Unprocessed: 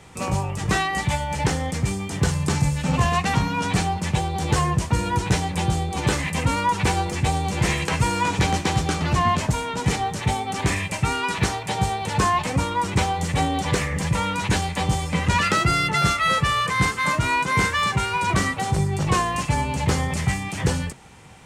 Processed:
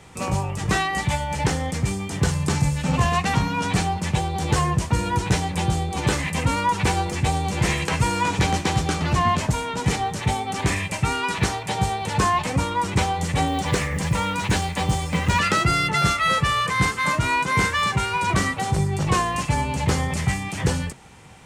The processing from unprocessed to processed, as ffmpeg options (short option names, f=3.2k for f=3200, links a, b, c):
-filter_complex "[0:a]asettb=1/sr,asplit=3[a][b][c];[a]atrim=end=13.474[d];[b]atrim=start=13.47:end=15.39,asetpts=PTS-STARTPTS,afade=t=in:d=0.004:c=qsin,afade=t=out:st=1.916:d=0.004:c=qsin,acrusher=bits=8:mode=log:mix=0:aa=0.000001[e];[c]atrim=start=15.386[f];[d][e]acrossfade=d=0.004:c1=hsin:c2=qsin[g];[g][f]acrossfade=d=0.004:c1=qsin:c2=hsin"